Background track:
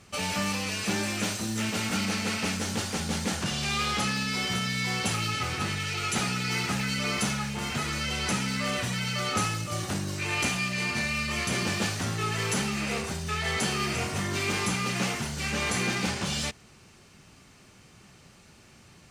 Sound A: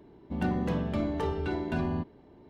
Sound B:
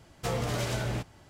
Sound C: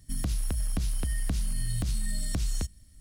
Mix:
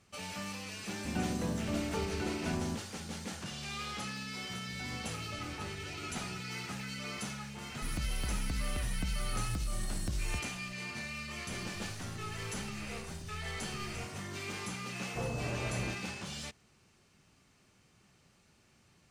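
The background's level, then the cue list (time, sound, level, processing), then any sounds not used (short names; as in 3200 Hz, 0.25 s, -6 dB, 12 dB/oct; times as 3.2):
background track -12 dB
0.74 add A -5.5 dB
4.38 add A -17.5 dB + phaser 1.8 Hz
7.73 add C -6.5 dB
11.39 add C -17.5 dB + ring modulator 50 Hz
14.92 add B -6 dB + pulse-width modulation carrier 2600 Hz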